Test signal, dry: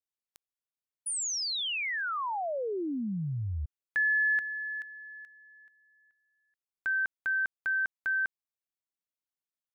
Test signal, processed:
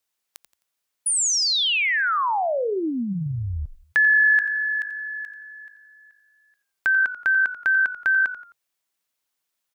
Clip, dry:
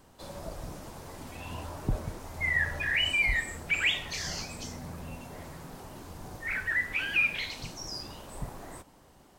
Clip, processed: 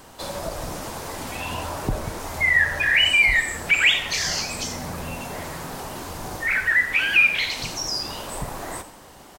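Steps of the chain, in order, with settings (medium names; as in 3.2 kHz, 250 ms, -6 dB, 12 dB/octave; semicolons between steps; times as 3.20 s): bass shelf 380 Hz -8 dB; in parallel at +1 dB: compression, threshold -43 dBFS; on the sum: frequency-shifting echo 87 ms, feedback 35%, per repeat -51 Hz, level -13.5 dB; trim +8.5 dB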